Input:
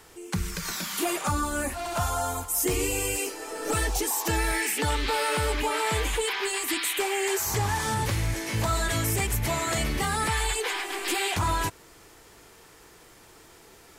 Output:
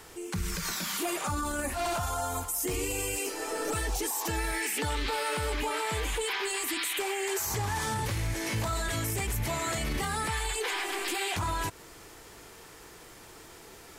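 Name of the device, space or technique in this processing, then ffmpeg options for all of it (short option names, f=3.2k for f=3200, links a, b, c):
stacked limiters: -af "alimiter=limit=-21dB:level=0:latency=1:release=19,alimiter=level_in=1.5dB:limit=-24dB:level=0:latency=1:release=123,volume=-1.5dB,volume=2.5dB"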